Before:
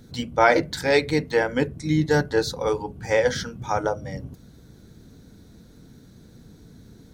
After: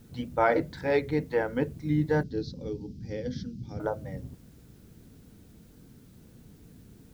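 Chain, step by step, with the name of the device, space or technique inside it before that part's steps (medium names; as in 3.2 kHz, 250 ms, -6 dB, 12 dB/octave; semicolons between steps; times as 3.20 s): cassette deck with a dirty head (tape spacing loss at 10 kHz 30 dB; wow and flutter; white noise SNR 35 dB); 2.23–3.80 s: FFT filter 110 Hz 0 dB, 250 Hz +5 dB, 1 kHz -26 dB, 5.2 kHz +5 dB, 8.8 kHz -14 dB; trim -4 dB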